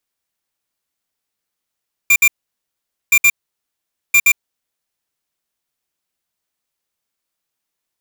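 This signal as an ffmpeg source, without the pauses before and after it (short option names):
-f lavfi -i "aevalsrc='0.316*(2*lt(mod(2380*t,1),0.5)-1)*clip(min(mod(mod(t,1.02),0.12),0.06-mod(mod(t,1.02),0.12))/0.005,0,1)*lt(mod(t,1.02),0.24)':d=3.06:s=44100"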